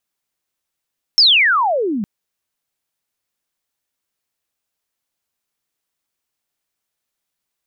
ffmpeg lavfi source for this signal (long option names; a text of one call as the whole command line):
ffmpeg -f lavfi -i "aevalsrc='pow(10,(-6.5-12*t/0.86)/20)*sin(2*PI*5500*0.86/log(190/5500)*(exp(log(190/5500)*t/0.86)-1))':duration=0.86:sample_rate=44100" out.wav